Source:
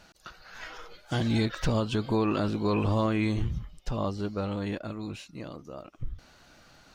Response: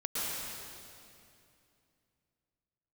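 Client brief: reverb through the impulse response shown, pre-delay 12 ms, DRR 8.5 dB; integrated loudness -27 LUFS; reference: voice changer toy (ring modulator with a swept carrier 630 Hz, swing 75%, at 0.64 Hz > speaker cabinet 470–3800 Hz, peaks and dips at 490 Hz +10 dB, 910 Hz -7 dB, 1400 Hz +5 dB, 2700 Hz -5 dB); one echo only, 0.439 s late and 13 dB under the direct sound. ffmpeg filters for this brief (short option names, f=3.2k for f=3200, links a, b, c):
-filter_complex "[0:a]aecho=1:1:439:0.224,asplit=2[a][b];[1:a]atrim=start_sample=2205,adelay=12[c];[b][c]afir=irnorm=-1:irlink=0,volume=-15dB[d];[a][d]amix=inputs=2:normalize=0,aeval=exprs='val(0)*sin(2*PI*630*n/s+630*0.75/0.64*sin(2*PI*0.64*n/s))':c=same,highpass=470,equalizer=f=490:t=q:w=4:g=10,equalizer=f=910:t=q:w=4:g=-7,equalizer=f=1.4k:t=q:w=4:g=5,equalizer=f=2.7k:t=q:w=4:g=-5,lowpass=f=3.8k:w=0.5412,lowpass=f=3.8k:w=1.3066,volume=4dB"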